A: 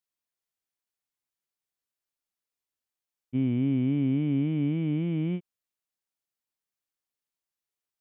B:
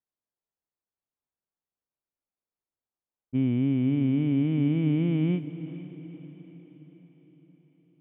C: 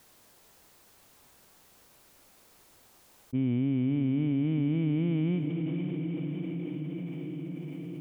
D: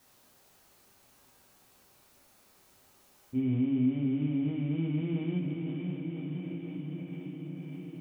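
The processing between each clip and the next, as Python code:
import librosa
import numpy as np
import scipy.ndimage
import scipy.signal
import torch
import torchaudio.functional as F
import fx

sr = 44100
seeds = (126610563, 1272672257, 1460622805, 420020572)

y1 = fx.rider(x, sr, range_db=10, speed_s=0.5)
y1 = fx.env_lowpass(y1, sr, base_hz=980.0, full_db=-27.0)
y1 = fx.echo_diffused(y1, sr, ms=470, feedback_pct=52, wet_db=-13.5)
y1 = y1 * librosa.db_to_amplitude(2.5)
y2 = fx.env_flatten(y1, sr, amount_pct=70)
y2 = y2 * librosa.db_to_amplitude(-4.5)
y3 = fx.rev_plate(y2, sr, seeds[0], rt60_s=0.6, hf_ratio=0.85, predelay_ms=0, drr_db=-2.5)
y3 = y3 * librosa.db_to_amplitude(-7.0)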